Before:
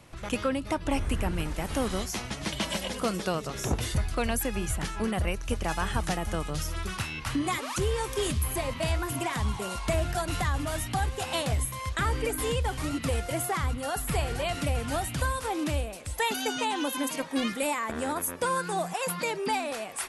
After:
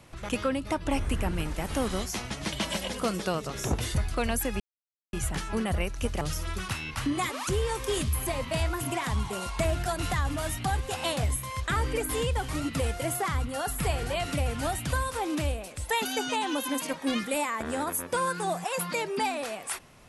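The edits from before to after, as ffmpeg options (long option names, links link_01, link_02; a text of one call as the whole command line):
ffmpeg -i in.wav -filter_complex "[0:a]asplit=3[link_01][link_02][link_03];[link_01]atrim=end=4.6,asetpts=PTS-STARTPTS,afade=type=out:start_time=4.596:duration=0.004:curve=hsin,apad=pad_dur=0.53[link_04];[link_02]atrim=start=4.6:end=5.682,asetpts=PTS-STARTPTS,afade=type=in:duration=0.004:curve=hsin[link_05];[link_03]atrim=start=6.498[link_06];[link_04][link_05]concat=n=2:v=0:a=1[link_07];[link_07][link_06]acrossfade=duration=0.004:curve1=hsin:curve2=hsin" out.wav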